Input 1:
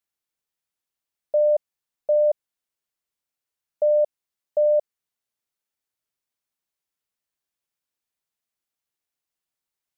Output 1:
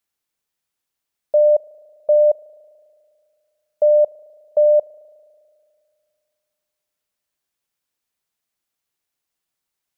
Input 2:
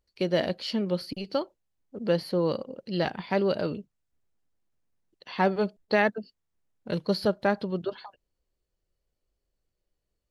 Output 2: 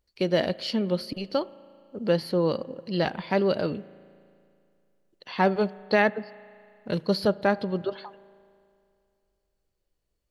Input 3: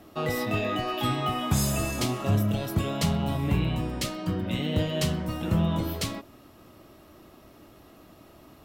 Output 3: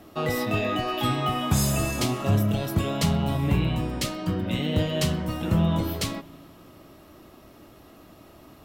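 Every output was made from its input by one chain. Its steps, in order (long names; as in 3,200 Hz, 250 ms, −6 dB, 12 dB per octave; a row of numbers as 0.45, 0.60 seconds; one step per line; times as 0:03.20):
spring reverb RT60 2.4 s, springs 36 ms, chirp 50 ms, DRR 19.5 dB
normalise the peak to −9 dBFS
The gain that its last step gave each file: +5.5, +2.0, +2.0 decibels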